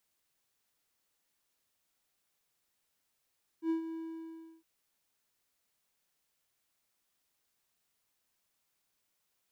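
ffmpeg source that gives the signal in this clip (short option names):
-f lavfi -i "aevalsrc='0.0562*(1-4*abs(mod(326*t+0.25,1)-0.5))':d=1.011:s=44100,afade=t=in:d=0.079,afade=t=out:st=0.079:d=0.113:silence=0.299,afade=t=out:st=0.32:d=0.691"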